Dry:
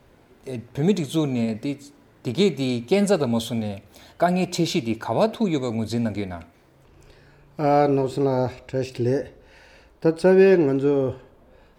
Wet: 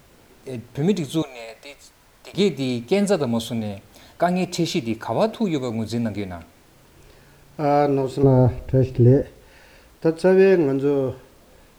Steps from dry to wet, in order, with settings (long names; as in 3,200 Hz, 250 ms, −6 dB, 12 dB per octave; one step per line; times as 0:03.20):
0:01.22–0:02.34: high-pass filter 590 Hz 24 dB per octave
0:08.23–0:09.23: spectral tilt −4 dB per octave
background noise pink −55 dBFS